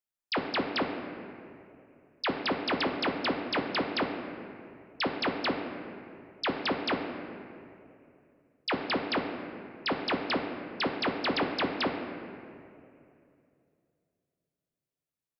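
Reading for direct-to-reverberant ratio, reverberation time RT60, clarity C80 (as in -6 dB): 2.0 dB, 2.7 s, 6.5 dB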